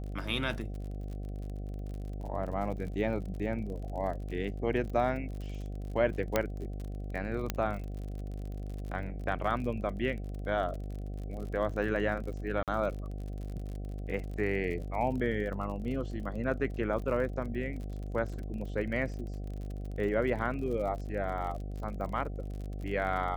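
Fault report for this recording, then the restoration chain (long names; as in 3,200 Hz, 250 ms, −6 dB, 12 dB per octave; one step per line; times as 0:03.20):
mains buzz 50 Hz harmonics 15 −38 dBFS
surface crackle 44 per second −39 dBFS
0:06.36: click −12 dBFS
0:07.50: click −14 dBFS
0:12.63–0:12.68: drop-out 47 ms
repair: click removal
hum removal 50 Hz, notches 15
repair the gap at 0:12.63, 47 ms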